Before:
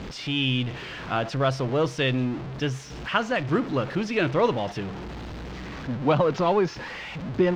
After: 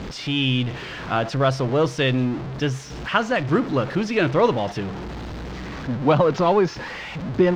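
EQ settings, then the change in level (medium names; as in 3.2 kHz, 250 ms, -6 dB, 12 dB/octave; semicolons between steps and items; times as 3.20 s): peaking EQ 2.7 kHz -2 dB; +4.0 dB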